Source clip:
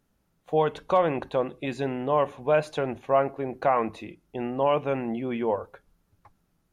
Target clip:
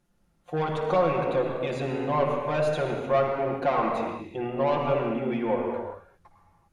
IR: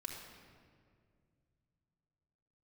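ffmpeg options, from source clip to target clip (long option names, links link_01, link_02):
-filter_complex "[0:a]asoftclip=type=tanh:threshold=-18dB[link_01];[1:a]atrim=start_sample=2205,afade=type=out:start_time=0.27:duration=0.01,atrim=end_sample=12348,asetrate=23814,aresample=44100[link_02];[link_01][link_02]afir=irnorm=-1:irlink=0"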